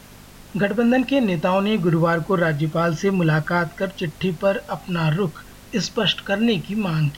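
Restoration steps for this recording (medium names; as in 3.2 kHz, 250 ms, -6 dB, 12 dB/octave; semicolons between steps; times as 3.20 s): de-hum 49.9 Hz, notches 5; noise print and reduce 23 dB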